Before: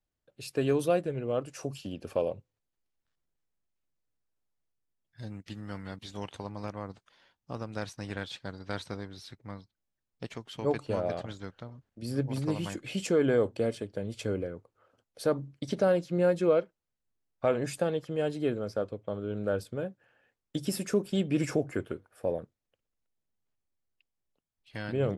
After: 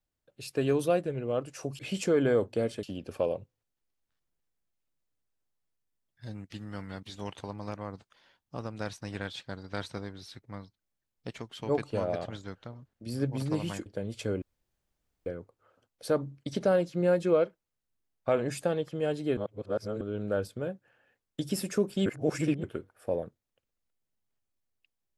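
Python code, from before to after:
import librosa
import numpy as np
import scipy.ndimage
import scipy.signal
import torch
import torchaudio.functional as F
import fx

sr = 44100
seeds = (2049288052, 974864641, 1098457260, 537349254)

y = fx.edit(x, sr, fx.move(start_s=12.82, length_s=1.04, to_s=1.79),
    fx.insert_room_tone(at_s=14.42, length_s=0.84),
    fx.reverse_span(start_s=18.53, length_s=0.64),
    fx.reverse_span(start_s=21.22, length_s=0.57), tone=tone)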